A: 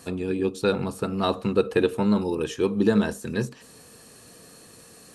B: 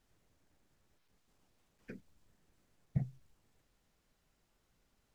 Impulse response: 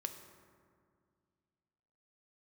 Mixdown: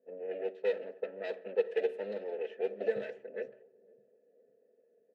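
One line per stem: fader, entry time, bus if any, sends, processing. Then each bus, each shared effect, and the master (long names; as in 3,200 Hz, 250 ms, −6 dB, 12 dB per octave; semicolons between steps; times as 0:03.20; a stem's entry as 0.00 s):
+0.5 dB, 0.00 s, send −10.5 dB, echo send −20.5 dB, lower of the sound and its delayed copy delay 4.6 ms; high-pass filter 320 Hz 12 dB per octave; high-shelf EQ 5,800 Hz +8 dB
−1.0 dB, 0.00 s, send −7 dB, echo send −13.5 dB, no processing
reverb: on, RT60 2.1 s, pre-delay 3 ms
echo: repeating echo 509 ms, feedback 37%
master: low-pass that shuts in the quiet parts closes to 340 Hz, open at −19 dBFS; formant filter e; high-shelf EQ 2,900 Hz −7.5 dB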